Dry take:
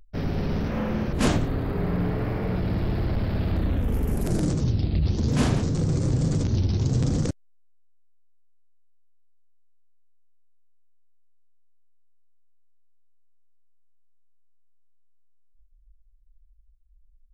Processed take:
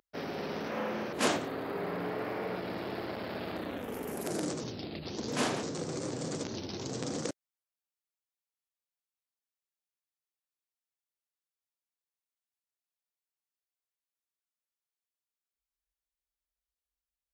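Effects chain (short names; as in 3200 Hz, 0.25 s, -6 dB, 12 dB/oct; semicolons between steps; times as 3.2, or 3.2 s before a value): HPF 390 Hz 12 dB/oct; gain -1.5 dB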